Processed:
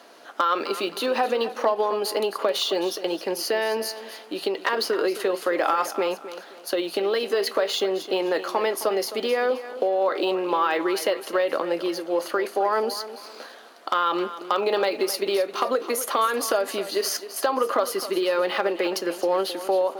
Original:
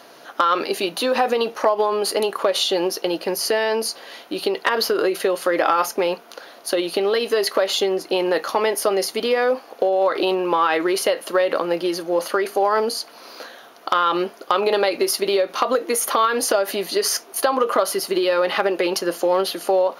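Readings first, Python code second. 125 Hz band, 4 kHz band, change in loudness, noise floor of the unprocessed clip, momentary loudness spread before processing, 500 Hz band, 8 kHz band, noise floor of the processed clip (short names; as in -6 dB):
n/a, -4.5 dB, -4.0 dB, -45 dBFS, 5 LU, -4.0 dB, -6.5 dB, -44 dBFS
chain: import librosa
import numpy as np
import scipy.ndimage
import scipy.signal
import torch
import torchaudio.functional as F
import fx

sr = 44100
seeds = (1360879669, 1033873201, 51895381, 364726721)

y = np.clip(x, -10.0 ** (-7.0 / 20.0), 10.0 ** (-7.0 / 20.0))
y = scipy.signal.sosfilt(scipy.signal.butter(4, 190.0, 'highpass', fs=sr, output='sos'), y)
y = fx.echo_feedback(y, sr, ms=263, feedback_pct=32, wet_db=-13.5)
y = np.interp(np.arange(len(y)), np.arange(len(y))[::2], y[::2])
y = y * 10.0 ** (-4.0 / 20.0)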